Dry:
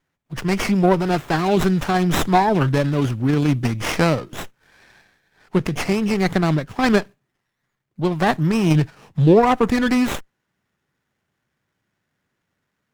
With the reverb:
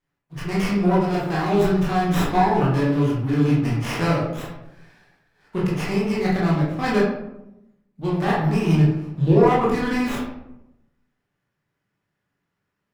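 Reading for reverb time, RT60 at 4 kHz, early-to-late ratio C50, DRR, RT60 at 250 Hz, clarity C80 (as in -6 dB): 0.85 s, 0.45 s, 2.0 dB, -6.5 dB, 1.1 s, 5.0 dB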